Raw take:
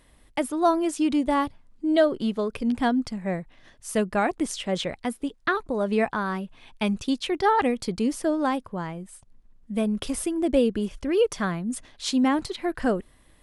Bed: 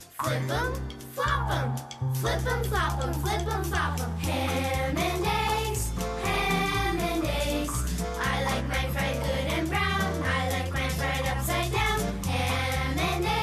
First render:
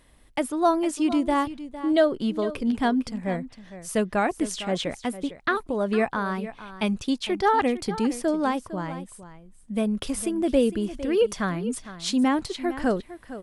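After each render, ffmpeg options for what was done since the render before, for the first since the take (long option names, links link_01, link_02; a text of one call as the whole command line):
ffmpeg -i in.wav -af "aecho=1:1:456:0.2" out.wav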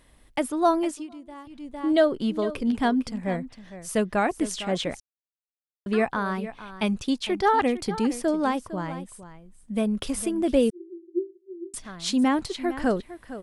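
ffmpeg -i in.wav -filter_complex "[0:a]asettb=1/sr,asplit=3[link_01][link_02][link_03];[link_01]atrim=end=10.704[link_04];[link_02]atrim=start=10.7:end=11.74,asetpts=PTS-STARTPTS,afade=type=in:duration=0.004:curve=qsin,afade=type=out:start_time=1.036:duration=0.004:curve=qsin,asuperpass=centerf=360:order=20:qfactor=6.4[link_05];[link_03]atrim=start=11.736[link_06];[link_04][link_05]acrossfade=duration=0.004:curve1=hsin:curve2=qsin[link_07];[link_07][link_06]acrossfade=duration=0.004:curve1=qsin:curve2=hsin,asplit=5[link_08][link_09][link_10][link_11][link_12];[link_08]atrim=end=1.07,asetpts=PTS-STARTPTS,afade=type=out:start_time=0.82:duration=0.25:silence=0.105925[link_13];[link_09]atrim=start=1.07:end=1.44,asetpts=PTS-STARTPTS,volume=-19.5dB[link_14];[link_10]atrim=start=1.44:end=5,asetpts=PTS-STARTPTS,afade=type=in:duration=0.25:silence=0.105925,afade=type=out:start_time=3.556:duration=0.004:curve=hsin[link_15];[link_11]atrim=start=5:end=5.86,asetpts=PTS-STARTPTS,volume=0[link_16];[link_12]atrim=start=5.86,asetpts=PTS-STARTPTS,afade=type=in:duration=0.004:curve=hsin[link_17];[link_13][link_14][link_15][link_16][link_17]concat=n=5:v=0:a=1" out.wav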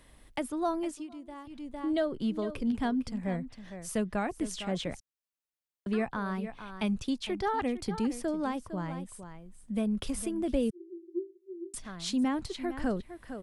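ffmpeg -i in.wav -filter_complex "[0:a]acrossover=split=180[link_01][link_02];[link_02]acompressor=threshold=-46dB:ratio=1.5[link_03];[link_01][link_03]amix=inputs=2:normalize=0" out.wav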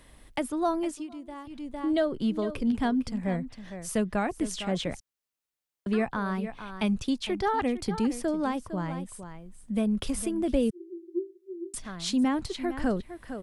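ffmpeg -i in.wav -af "volume=3.5dB" out.wav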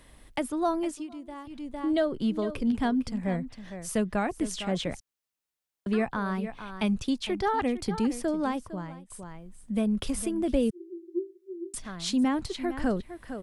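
ffmpeg -i in.wav -filter_complex "[0:a]asplit=2[link_01][link_02];[link_01]atrim=end=9.1,asetpts=PTS-STARTPTS,afade=type=out:start_time=8.54:duration=0.56:silence=0.112202[link_03];[link_02]atrim=start=9.1,asetpts=PTS-STARTPTS,afade=type=in:duration=0.004:curve=hsin:silence=0.112202[link_04];[link_03][link_04]concat=n=2:v=0:a=1" out.wav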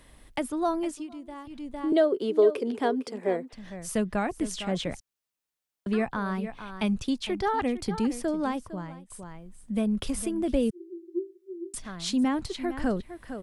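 ffmpeg -i in.wav -filter_complex "[0:a]asettb=1/sr,asplit=3[link_01][link_02][link_03];[link_01]atrim=end=1.924[link_04];[link_02]atrim=start=1.92:end=3.53,asetpts=PTS-STARTPTS,afade=type=in:duration=0.004:curve=qsin,afade=type=out:start_time=1.606:duration=0.004:curve=qsin,highpass=frequency=410:width_type=q:width=5.1[link_05];[link_03]atrim=start=3.526[link_06];[link_04][link_05]acrossfade=duration=0.004:curve1=hsin:curve2=qsin[link_07];[link_07][link_06]acrossfade=duration=0.004:curve1=qsin:curve2=hsin" out.wav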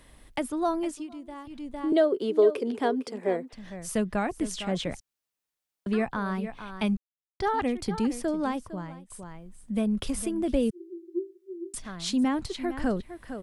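ffmpeg -i in.wav -filter_complex "[0:a]asplit=3[link_01][link_02][link_03];[link_01]atrim=end=6.97,asetpts=PTS-STARTPTS,afade=type=out:start_time=6.966:duration=0.004:curve=hsin[link_04];[link_02]atrim=start=6.97:end=7.4,asetpts=PTS-STARTPTS,volume=0[link_05];[link_03]atrim=start=7.4,asetpts=PTS-STARTPTS,afade=type=in:duration=0.004:curve=hsin[link_06];[link_04][link_05][link_06]concat=n=3:v=0:a=1" out.wav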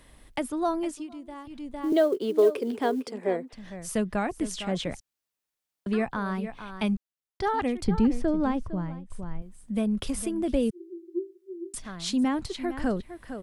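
ffmpeg -i in.wav -filter_complex "[0:a]asettb=1/sr,asplit=3[link_01][link_02][link_03];[link_01]atrim=end=1.824[link_04];[link_02]atrim=start=1.82:end=3.11,asetpts=PTS-STARTPTS,afade=type=in:duration=0.004:curve=qsin,afade=type=out:start_time=1.286:duration=0.004:curve=qsin,acrusher=bits=8:mode=log:mix=0:aa=0.000001[link_05];[link_03]atrim=start=3.106[link_06];[link_04][link_05]acrossfade=duration=0.004:curve1=hsin:curve2=qsin[link_07];[link_07][link_06]acrossfade=duration=0.004:curve1=qsin:curve2=hsin,asettb=1/sr,asplit=3[link_08][link_09][link_10];[link_08]atrim=end=7.844[link_11];[link_09]atrim=start=7.84:end=9.42,asetpts=PTS-STARTPTS,afade=type=in:duration=0.004:curve=qsin,afade=type=out:start_time=1.576:duration=0.004:curve=qsin,aemphasis=mode=reproduction:type=bsi[link_12];[link_10]atrim=start=9.416[link_13];[link_11][link_12]acrossfade=duration=0.004:curve1=hsin:curve2=qsin[link_14];[link_14][link_13]acrossfade=duration=0.004:curve1=qsin:curve2=hsin" out.wav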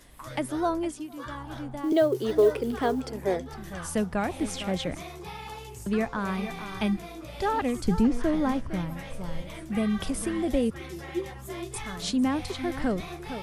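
ffmpeg -i in.wav -i bed.wav -filter_complex "[1:a]volume=-13.5dB[link_01];[0:a][link_01]amix=inputs=2:normalize=0" out.wav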